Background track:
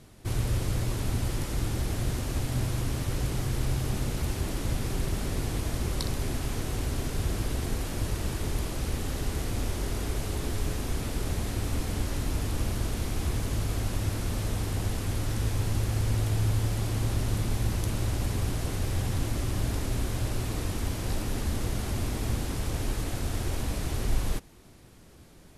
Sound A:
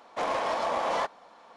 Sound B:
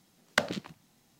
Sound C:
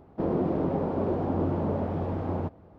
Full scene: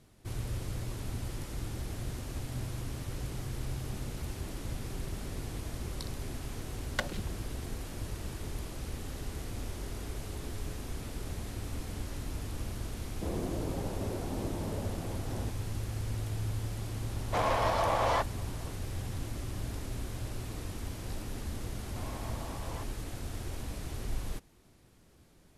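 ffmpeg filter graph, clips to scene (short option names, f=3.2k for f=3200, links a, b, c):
-filter_complex "[1:a]asplit=2[a][b];[0:a]volume=-8.5dB[c];[2:a]aecho=1:1:5.5:0.65,atrim=end=1.19,asetpts=PTS-STARTPTS,volume=-8.5dB,afade=t=in:d=0.004:c=hsin,afade=t=out:st=1.186:d=0.004:c=hsin,adelay=6610[d];[3:a]atrim=end=2.78,asetpts=PTS-STARTPTS,volume=-10.5dB,afade=t=in:d=0.004:c=hsin,afade=t=out:st=2.776:d=0.004:c=hsin,adelay=13030[e];[a]atrim=end=1.56,asetpts=PTS-STARTPTS,volume=-0.5dB,afade=t=in:d=0.004:c=hsin,afade=t=out:st=1.556:d=0.004:c=hsin,adelay=756756S[f];[b]atrim=end=1.56,asetpts=PTS-STARTPTS,volume=-18dB,afade=t=in:d=0.004:c=hsin,afade=t=out:st=1.556:d=0.004:c=hsin,adelay=21780[g];[c][d][e][f][g]amix=inputs=5:normalize=0"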